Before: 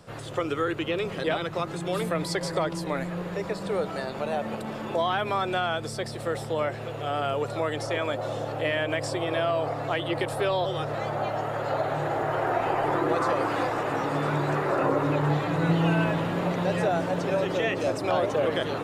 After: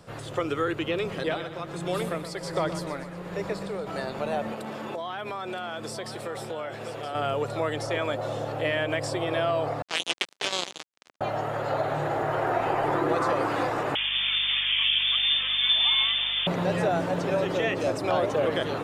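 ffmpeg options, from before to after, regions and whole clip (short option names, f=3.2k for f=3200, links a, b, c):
-filter_complex "[0:a]asettb=1/sr,asplit=3[a][b][c];[a]atrim=end=1.154[d];[b]atrim=start=1.15:end=3.87,asetpts=PTS-STARTPTS,afade=t=in:d=0.004:c=qsin,afade=t=out:st=2.716:d=0.004:c=qsin,tremolo=f=1.3:d=0.59,aecho=1:1:122|244|366|488|610|732:0.266|0.144|0.0776|0.0419|0.0226|0.0122,atrim=end_sample=119952[e];[c]atrim=start=3.866[f];[d][e]acrossfade=d=0.004:c1=hsin:c2=qsin[g];[g][f]acrossfade=d=0.004:c1=qsin:c2=hsin,asettb=1/sr,asplit=3[h][i][j];[h]atrim=end=4.524[k];[i]atrim=start=4.52:end=7.15,asetpts=PTS-STARTPTS,afade=t=in:d=0.004:c=qsin,afade=t=out:st=2.626:d=0.004:c=qsin,highpass=f=190:p=1,acompressor=threshold=-30dB:ratio=5:attack=3.2:release=140:knee=1:detection=peak,aecho=1:1:970:0.282,atrim=end_sample=115983[l];[j]atrim=start=7.146[m];[k][l]acrossfade=d=0.004:c1=hsin:c2=qsin[n];[n][m]acrossfade=d=0.004:c1=qsin:c2=hsin,asettb=1/sr,asplit=3[o][p][q];[o]atrim=end=9.824[r];[p]atrim=start=9.82:end=11.21,asetpts=PTS-STARTPTS,afade=t=in:d=0.004:c=qsin,afade=t=out:st=1.386:d=0.004:c=qsin,highshelf=f=2.2k:t=q:w=1.5:g=10,acrusher=bits=2:mix=0:aa=0.5,highpass=250,lowpass=6.5k[s];[q]atrim=start=11.206[t];[r][s]acrossfade=d=0.004:c1=hsin:c2=qsin[u];[u][t]acrossfade=d=0.004:c1=qsin:c2=hsin,asettb=1/sr,asplit=3[v][w][x];[v]atrim=end=13.954[y];[w]atrim=start=13.95:end=16.47,asetpts=PTS-STARTPTS,afade=t=in:d=0.004:c=qsin,afade=t=out:st=2.516:d=0.004:c=qsin,lowpass=f=3.1k:t=q:w=0.5098,lowpass=f=3.1k:t=q:w=0.6013,lowpass=f=3.1k:t=q:w=0.9,lowpass=f=3.1k:t=q:w=2.563,afreqshift=-3700,aeval=exprs='val(0)+0.00282*(sin(2*PI*50*n/s)+sin(2*PI*2*50*n/s)/2+sin(2*PI*3*50*n/s)/3+sin(2*PI*4*50*n/s)/4+sin(2*PI*5*50*n/s)/5)':c=same[z];[x]atrim=start=16.466[aa];[y][z]acrossfade=d=0.004:c1=hsin:c2=qsin[ab];[ab][aa]acrossfade=d=0.004:c1=qsin:c2=hsin"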